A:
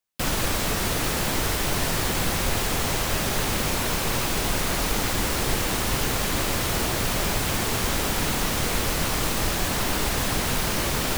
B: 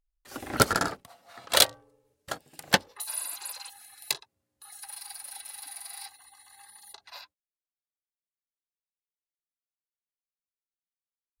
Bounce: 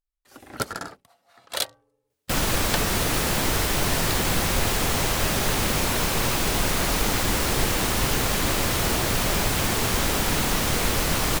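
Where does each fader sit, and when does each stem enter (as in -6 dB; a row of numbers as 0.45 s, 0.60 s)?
+1.5 dB, -7.0 dB; 2.10 s, 0.00 s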